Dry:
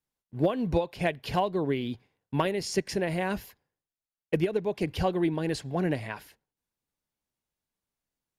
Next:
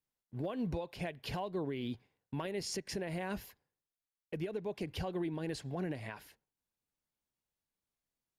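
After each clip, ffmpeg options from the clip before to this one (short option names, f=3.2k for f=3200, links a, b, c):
-af "alimiter=level_in=0.5dB:limit=-24dB:level=0:latency=1:release=150,volume=-0.5dB,volume=-4.5dB"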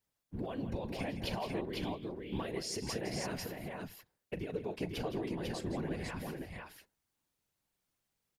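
-af "acompressor=threshold=-43dB:ratio=3,afftfilt=real='hypot(re,im)*cos(2*PI*random(0))':imag='hypot(re,im)*sin(2*PI*random(1))':win_size=512:overlap=0.75,aecho=1:1:40|165|498:0.168|0.282|0.668,volume=11dB"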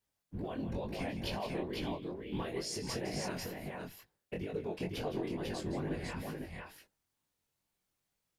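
-af "flanger=delay=19:depth=4.7:speed=2.2,volume=3dB"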